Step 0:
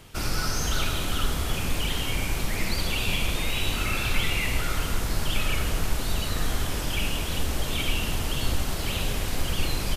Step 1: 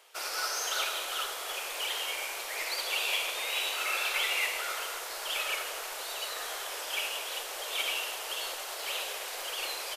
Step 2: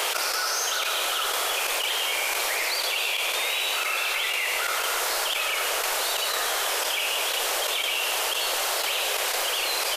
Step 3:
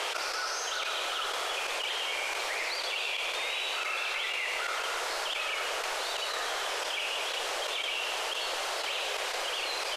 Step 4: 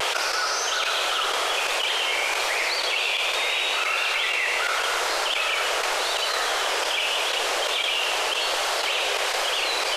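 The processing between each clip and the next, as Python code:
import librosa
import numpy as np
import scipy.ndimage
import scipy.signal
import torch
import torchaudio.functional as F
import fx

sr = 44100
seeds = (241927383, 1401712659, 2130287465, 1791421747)

y1 = scipy.signal.sosfilt(scipy.signal.cheby2(4, 40, 240.0, 'highpass', fs=sr, output='sos'), x)
y1 = fx.upward_expand(y1, sr, threshold_db=-40.0, expansion=1.5)
y2 = fx.step_gate(y1, sr, bpm=90, pattern='x.xxx...x', floor_db=-12.0, edge_ms=4.5)
y2 = fx.env_flatten(y2, sr, amount_pct=100)
y2 = y2 * librosa.db_to_amplitude(1.5)
y3 = fx.air_absorb(y2, sr, metres=66.0)
y3 = y3 * librosa.db_to_amplitude(-5.0)
y4 = fx.vibrato(y3, sr, rate_hz=1.3, depth_cents=46.0)
y4 = y4 * librosa.db_to_amplitude(8.5)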